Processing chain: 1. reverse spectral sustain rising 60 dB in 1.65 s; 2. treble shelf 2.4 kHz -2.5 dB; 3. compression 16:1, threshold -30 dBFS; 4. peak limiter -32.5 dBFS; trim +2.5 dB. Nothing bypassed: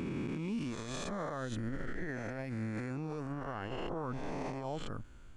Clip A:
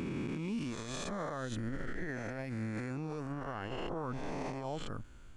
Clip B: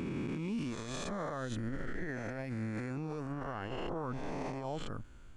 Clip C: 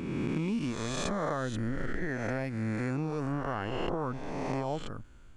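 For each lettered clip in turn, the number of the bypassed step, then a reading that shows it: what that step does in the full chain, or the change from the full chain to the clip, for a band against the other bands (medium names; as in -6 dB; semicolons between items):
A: 2, 8 kHz band +1.5 dB; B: 3, mean gain reduction 3.0 dB; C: 4, mean gain reduction 5.0 dB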